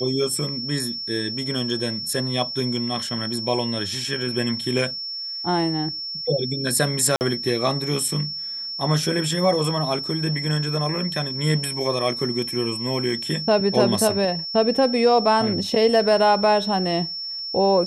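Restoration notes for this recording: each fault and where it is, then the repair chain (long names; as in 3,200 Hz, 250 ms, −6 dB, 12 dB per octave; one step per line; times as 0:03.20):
whistle 5,400 Hz −28 dBFS
0:07.16–0:07.21: drop-out 49 ms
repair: notch filter 5,400 Hz, Q 30
repair the gap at 0:07.16, 49 ms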